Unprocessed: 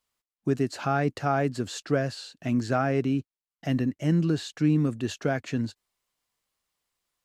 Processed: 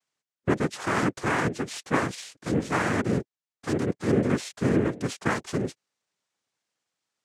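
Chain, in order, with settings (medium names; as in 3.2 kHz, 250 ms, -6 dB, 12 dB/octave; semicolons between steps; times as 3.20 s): noise-vocoded speech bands 3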